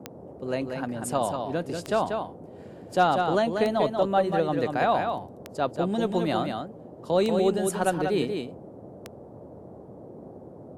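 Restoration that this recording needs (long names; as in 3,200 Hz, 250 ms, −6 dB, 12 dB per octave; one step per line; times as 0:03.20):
clipped peaks rebuilt −10.5 dBFS
click removal
noise reduction from a noise print 26 dB
echo removal 189 ms −5.5 dB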